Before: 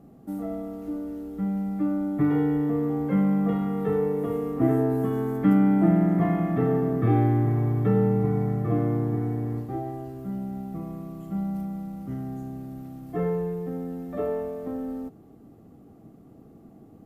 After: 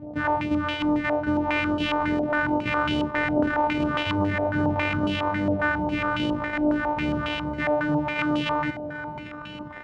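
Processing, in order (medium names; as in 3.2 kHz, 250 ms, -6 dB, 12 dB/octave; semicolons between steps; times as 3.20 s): sorted samples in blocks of 256 samples; high-pass 42 Hz; bass shelf 260 Hz +7.5 dB; reverse; compression 12:1, threshold -28 dBFS, peak gain reduction 18 dB; reverse; phase shifter stages 2, 1.4 Hz, lowest notch 100–1100 Hz; on a send: feedback delay 844 ms, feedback 49%, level -11.5 dB; on the sum: speed mistake 45 rpm record played at 78 rpm; step-sequenced low-pass 7.3 Hz 710–2900 Hz; trim +8.5 dB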